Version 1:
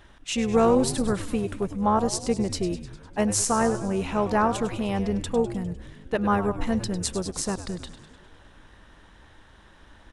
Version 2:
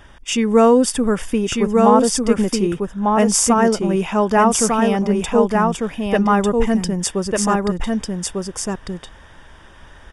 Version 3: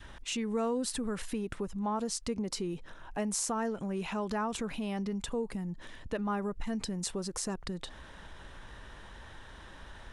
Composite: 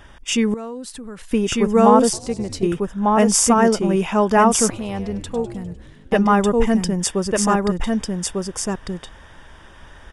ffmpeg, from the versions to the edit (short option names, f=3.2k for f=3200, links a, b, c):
-filter_complex "[0:a]asplit=2[a][b];[1:a]asplit=4[c][d][e][f];[c]atrim=end=0.542[g];[2:a]atrim=start=0.538:end=1.312[h];[d]atrim=start=1.308:end=2.132[i];[a]atrim=start=2.128:end=2.632[j];[e]atrim=start=2.628:end=4.702[k];[b]atrim=start=4.698:end=6.122[l];[f]atrim=start=6.118[m];[g][h]acrossfade=d=0.004:c1=hsin:c2=hsin[n];[n][i]acrossfade=d=0.004:c1=hsin:c2=hsin[o];[o][j]acrossfade=d=0.004:c1=hsin:c2=hsin[p];[p][k]acrossfade=d=0.004:c1=hsin:c2=hsin[q];[q][l]acrossfade=d=0.004:c1=hsin:c2=hsin[r];[r][m]acrossfade=d=0.004:c1=hsin:c2=hsin"